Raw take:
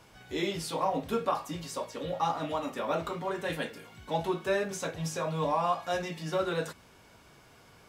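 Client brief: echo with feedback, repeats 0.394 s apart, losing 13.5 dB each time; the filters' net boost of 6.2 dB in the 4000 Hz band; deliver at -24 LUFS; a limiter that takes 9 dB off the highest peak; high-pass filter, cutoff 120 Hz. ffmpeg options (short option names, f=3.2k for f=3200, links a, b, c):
-af "highpass=120,equalizer=f=4k:t=o:g=7.5,alimiter=limit=-23dB:level=0:latency=1,aecho=1:1:394|788:0.211|0.0444,volume=10dB"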